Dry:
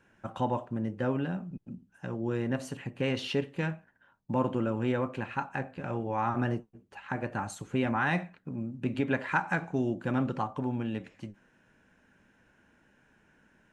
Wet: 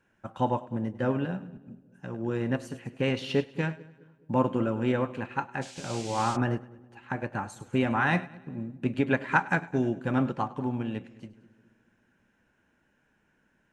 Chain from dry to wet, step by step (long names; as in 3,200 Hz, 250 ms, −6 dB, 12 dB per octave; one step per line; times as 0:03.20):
echo with a time of its own for lows and highs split 560 Hz, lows 210 ms, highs 102 ms, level −14 dB
0:05.61–0:06.35: noise in a band 2,100–8,000 Hz −44 dBFS
expander for the loud parts 1.5 to 1, over −44 dBFS
level +5 dB